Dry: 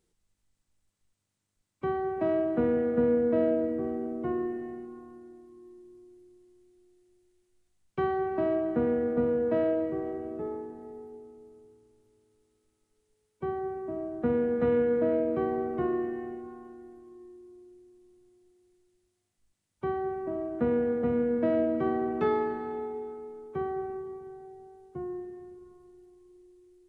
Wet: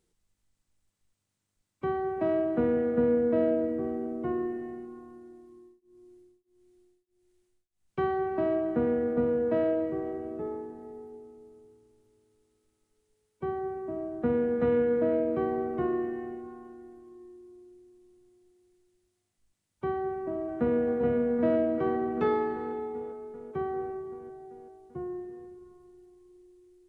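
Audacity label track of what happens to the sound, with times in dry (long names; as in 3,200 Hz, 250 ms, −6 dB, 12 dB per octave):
5.500000	7.990000	tremolo along a rectified sine nulls at 1.6 Hz
20.090000	20.780000	delay throw 390 ms, feedback 75%, level −7.5 dB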